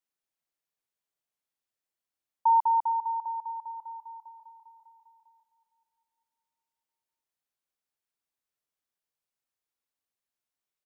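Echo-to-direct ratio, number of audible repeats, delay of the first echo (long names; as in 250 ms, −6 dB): −19.5 dB, 3, 458 ms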